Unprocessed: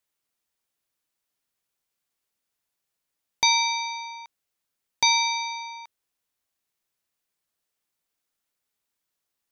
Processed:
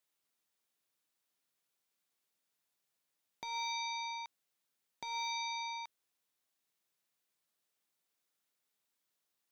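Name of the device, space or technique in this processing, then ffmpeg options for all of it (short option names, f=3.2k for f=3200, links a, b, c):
broadcast voice chain: -af "highpass=120,deesser=0.7,acompressor=threshold=-33dB:ratio=4,equalizer=f=3.7k:t=o:w=0.28:g=2,alimiter=level_in=3dB:limit=-24dB:level=0:latency=1:release=138,volume=-3dB,volume=-2.5dB"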